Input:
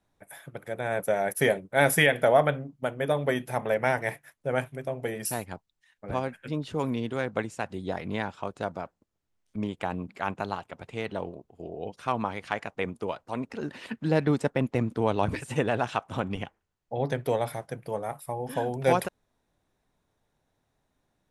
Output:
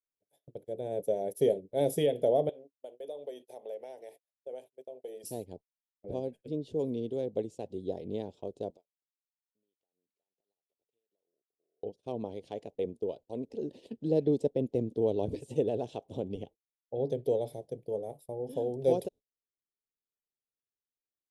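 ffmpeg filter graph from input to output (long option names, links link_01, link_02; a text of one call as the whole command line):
ffmpeg -i in.wav -filter_complex "[0:a]asettb=1/sr,asplit=3[link_01][link_02][link_03];[link_01]atrim=end=2.494[link_04];[link_02]atrim=start=2.49:end=5.24,asetpts=PTS-STARTPTS,afade=type=in:duration=0.004:curve=qsin,afade=type=out:start_time=2.746:duration=0.004:curve=qsin,highpass=610,acompressor=threshold=-36dB:ratio=2:attack=3.2:release=140:knee=1:detection=peak[link_05];[link_03]atrim=start=5.236[link_06];[link_04][link_05]acrossfade=duration=0.004:curve1=hsin:curve2=qsin[link_07];[link_07][link_06]acrossfade=duration=0.004:curve1=qsin:curve2=hsin,asettb=1/sr,asplit=3[link_08][link_09][link_10];[link_08]atrim=end=8.704[link_11];[link_09]atrim=start=8.7:end=11.83,asetpts=PTS-STARTPTS,afade=type=in:duration=0.004:curve=qsin,afade=type=out:start_time=3.126:duration=0.004:curve=qsin,highpass=frequency=1300:poles=1,acompressor=threshold=-49dB:ratio=12:attack=3.2:release=140:knee=1:detection=peak[link_12];[link_10]atrim=start=11.826[link_13];[link_11][link_12]acrossfade=duration=0.004:curve1=hsin:curve2=qsin[link_14];[link_14][link_13]acrossfade=duration=0.004:curve1=qsin:curve2=hsin,agate=range=-28dB:threshold=-43dB:ratio=16:detection=peak,firequalizer=gain_entry='entry(180,0);entry(430,10);entry(1300,-29);entry(3300,-3);entry(8400,-5)':delay=0.05:min_phase=1,volume=-8dB" out.wav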